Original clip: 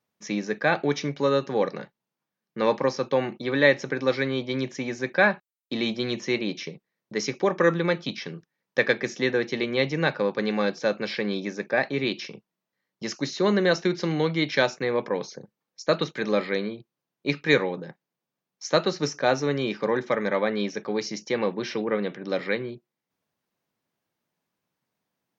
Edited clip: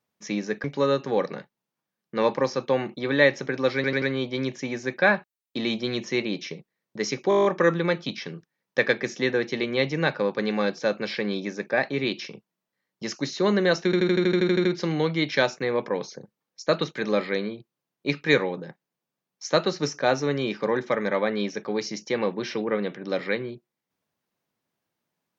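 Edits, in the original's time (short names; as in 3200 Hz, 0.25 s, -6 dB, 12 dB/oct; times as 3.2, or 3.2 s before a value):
0.64–1.07 cut
4.18 stutter 0.09 s, 4 plays
7.45 stutter 0.02 s, 9 plays
13.85 stutter 0.08 s, 11 plays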